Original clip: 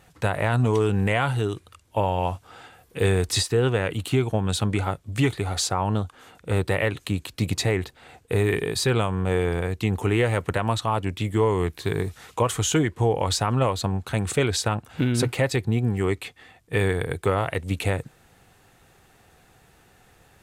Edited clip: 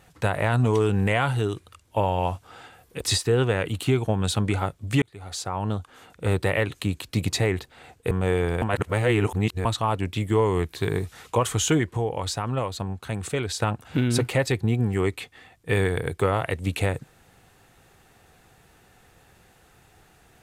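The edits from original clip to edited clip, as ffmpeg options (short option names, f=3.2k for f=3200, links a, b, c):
-filter_complex "[0:a]asplit=8[a][b][c][d][e][f][g][h];[a]atrim=end=3.012[i];[b]atrim=start=3.258:end=5.27,asetpts=PTS-STARTPTS,afade=t=out:st=2.008:d=0.004:c=hsin[j];[c]atrim=start=5.27:end=8.362,asetpts=PTS-STARTPTS,afade=t=in:d=1.3:c=qsin[k];[d]atrim=start=9.148:end=9.662[l];[e]atrim=start=9.658:end=10.692,asetpts=PTS-STARTPTS,areverse[m];[f]atrim=start=10.688:end=13.012[n];[g]atrim=start=13.008:end=14.642,asetpts=PTS-STARTPTS,volume=-5dB[o];[h]atrim=start=14.638[p];[j][k]concat=n=2:v=0:a=1[q];[i][q]acrossfade=d=0.004:c1=hsin:c2=hsin[r];[r][l]acrossfade=d=0.004:c1=hsin:c2=hsin[s];[s][m]acrossfade=d=0.004:c1=hsin:c2=hsin[t];[t][n]acrossfade=d=0.004:c1=hsin:c2=hsin[u];[u][o]acrossfade=d=0.004:c1=hsin:c2=hsin[v];[v][p]acrossfade=d=0.004:c1=hsin:c2=hsin"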